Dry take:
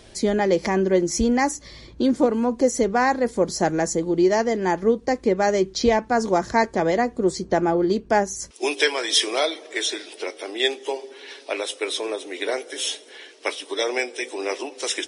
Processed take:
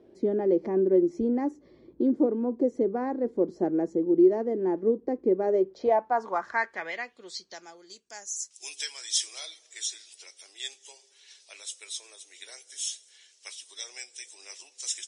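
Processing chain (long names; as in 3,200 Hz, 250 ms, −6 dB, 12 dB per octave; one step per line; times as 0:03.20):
band-pass filter sweep 340 Hz → 7,200 Hz, 0:05.35–0:07.86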